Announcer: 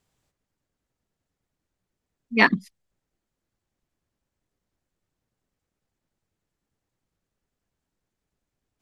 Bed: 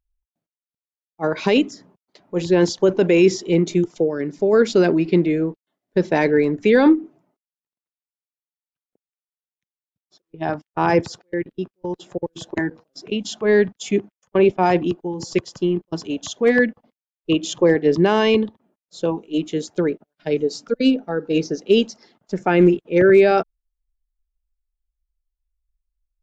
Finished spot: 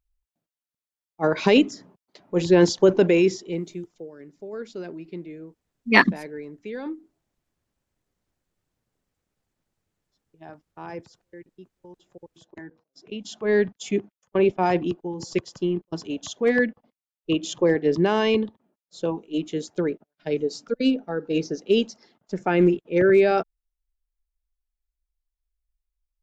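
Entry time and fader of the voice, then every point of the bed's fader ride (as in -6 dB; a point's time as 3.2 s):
3.55 s, +2.0 dB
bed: 2.98 s 0 dB
3.95 s -19.5 dB
12.53 s -19.5 dB
13.56 s -4.5 dB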